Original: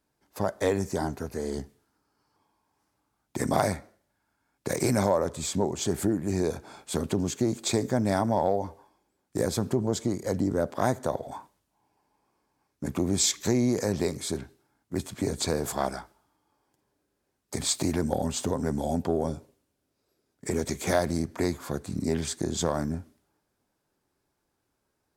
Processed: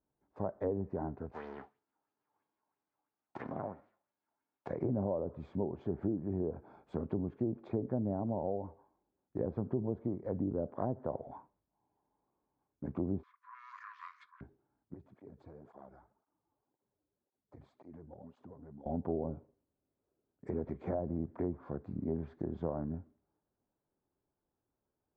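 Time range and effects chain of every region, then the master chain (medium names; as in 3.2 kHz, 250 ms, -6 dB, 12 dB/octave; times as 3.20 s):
1.31–4.68 s: formants flattened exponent 0.3 + high-pass 230 Hz 6 dB/octave + sweeping bell 3 Hz 740–5900 Hz +10 dB
13.23–14.41 s: waveshaping leveller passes 3 + brick-wall FIR band-pass 970–11000 Hz
14.94–18.86 s: treble shelf 5.7 kHz -9 dB + compression 2:1, threshold -48 dBFS + cancelling through-zero flanger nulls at 1.9 Hz, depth 5.3 ms
20.62–21.05 s: hard clipper -14 dBFS + short-mantissa float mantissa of 2-bit
whole clip: low-pass that closes with the level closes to 630 Hz, closed at -21 dBFS; low-pass 1 kHz 12 dB/octave; trim -8 dB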